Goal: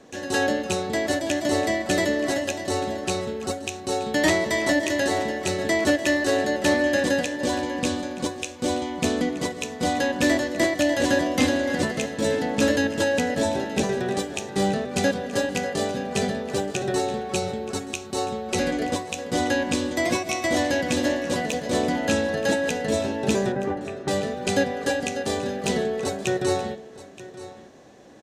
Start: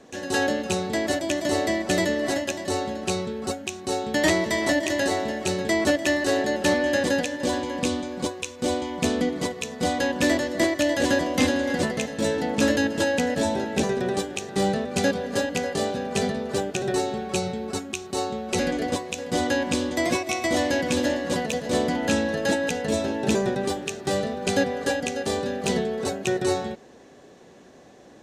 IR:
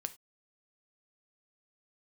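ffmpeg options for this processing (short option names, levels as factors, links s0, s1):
-filter_complex "[0:a]asettb=1/sr,asplit=3[s0][s1][s2];[s0]atrim=end=23.524[s3];[s1]atrim=start=23.52:end=24.08,asetpts=PTS-STARTPTS,afade=t=in:d=0.004:c=qsin,afade=t=out:st=0.556:d=0.004:c=qsin,lowpass=f=2000:w=0.5412,lowpass=f=2000:w=1.3066[s4];[s2]atrim=start=24.076[s5];[s3][s4]acrossfade=d=0.004:c1=hsin:c2=qsin[s6];[s6][s5]acrossfade=d=0.004:c1=qsin:c2=hsin,aecho=1:1:926:0.15,asplit=2[s7][s8];[1:a]atrim=start_sample=2205[s9];[s8][s9]afir=irnorm=-1:irlink=0,volume=2.24[s10];[s7][s10]amix=inputs=2:normalize=0,volume=0.355"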